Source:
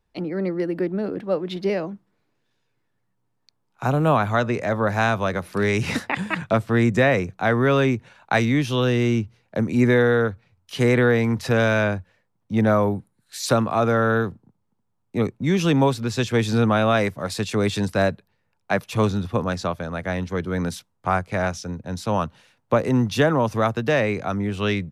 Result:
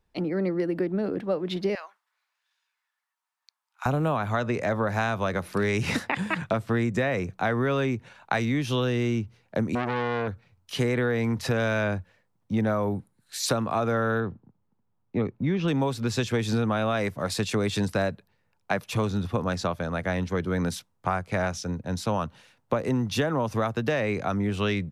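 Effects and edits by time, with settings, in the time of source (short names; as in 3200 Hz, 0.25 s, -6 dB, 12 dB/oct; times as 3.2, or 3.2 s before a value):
1.75–3.86 HPF 970 Hz 24 dB/oct
9.75–10.28 core saturation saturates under 1300 Hz
14.2–15.68 air absorption 250 m
whole clip: compressor, threshold -22 dBFS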